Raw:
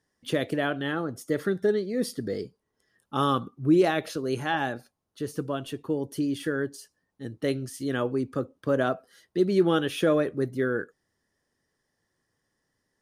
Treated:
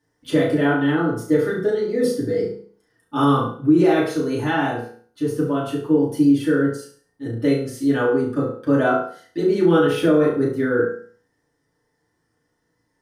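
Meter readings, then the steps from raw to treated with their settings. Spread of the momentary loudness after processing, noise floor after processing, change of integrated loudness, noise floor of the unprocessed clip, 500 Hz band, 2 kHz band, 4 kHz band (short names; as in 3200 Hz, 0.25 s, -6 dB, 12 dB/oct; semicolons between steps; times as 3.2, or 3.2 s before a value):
10 LU, -71 dBFS, +8.0 dB, -79 dBFS, +7.0 dB, +6.0 dB, +2.0 dB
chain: flutter echo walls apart 6 m, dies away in 0.44 s; FDN reverb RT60 0.4 s, low-frequency decay 1.05×, high-frequency decay 0.35×, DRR -6 dB; maximiser +4 dB; gain -6 dB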